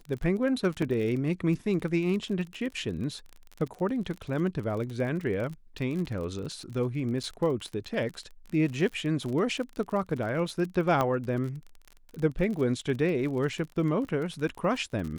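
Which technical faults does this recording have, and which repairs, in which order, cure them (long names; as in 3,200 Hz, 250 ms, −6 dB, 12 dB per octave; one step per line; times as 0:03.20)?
surface crackle 34 per second −34 dBFS
0:00.82: drop-out 3.7 ms
0:07.23–0:07.24: drop-out 6.7 ms
0:11.01: click −14 dBFS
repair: click removal
repair the gap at 0:00.82, 3.7 ms
repair the gap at 0:07.23, 6.7 ms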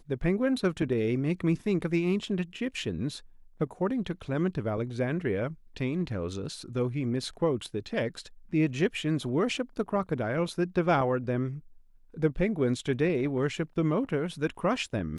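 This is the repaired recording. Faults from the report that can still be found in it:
none of them is left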